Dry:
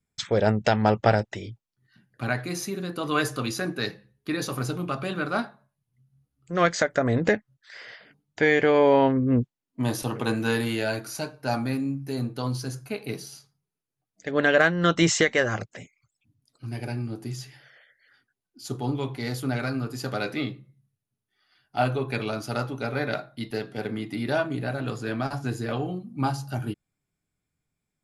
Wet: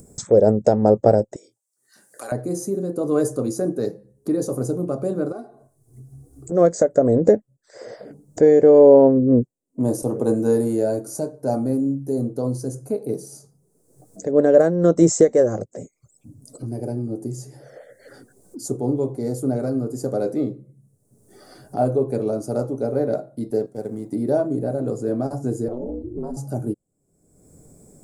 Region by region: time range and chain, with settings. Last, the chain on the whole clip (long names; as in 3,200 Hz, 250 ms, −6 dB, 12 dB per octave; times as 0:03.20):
0:01.36–0:02.32: high-pass filter 1,400 Hz + parametric band 8,200 Hz +4 dB 1.1 octaves + double-tracking delay 25 ms −10 dB
0:05.32–0:06.52: comb filter 2.7 ms, depth 80% + downward compressor 1.5 to 1, threshold −57 dBFS
0:23.66–0:24.13: mu-law and A-law mismatch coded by A + parametric band 350 Hz −6 dB 2.3 octaves
0:25.68–0:26.37: spectral tilt −1.5 dB per octave + downward compressor 4 to 1, threshold −30 dBFS + ring modulation 120 Hz
whole clip: drawn EQ curve 110 Hz 0 dB, 530 Hz +10 dB, 880 Hz −5 dB, 3,000 Hz −27 dB, 8,100 Hz +7 dB, 12,000 Hz −3 dB; upward compression, threshold −26 dBFS; level +1 dB